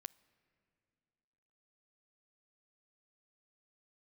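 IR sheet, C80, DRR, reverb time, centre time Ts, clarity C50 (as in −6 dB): 23.5 dB, 21.0 dB, 2.5 s, 2 ms, 22.0 dB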